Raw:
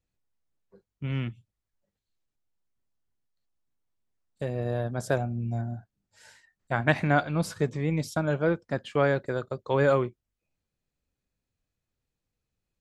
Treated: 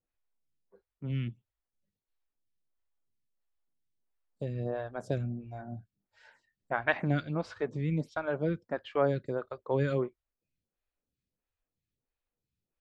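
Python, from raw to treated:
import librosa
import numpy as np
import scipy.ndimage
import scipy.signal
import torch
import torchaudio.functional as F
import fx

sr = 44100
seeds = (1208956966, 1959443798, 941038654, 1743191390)

y = scipy.signal.sosfilt(scipy.signal.butter(2, 4600.0, 'lowpass', fs=sr, output='sos'), x)
y = fx.stagger_phaser(y, sr, hz=1.5)
y = y * 10.0 ** (-2.0 / 20.0)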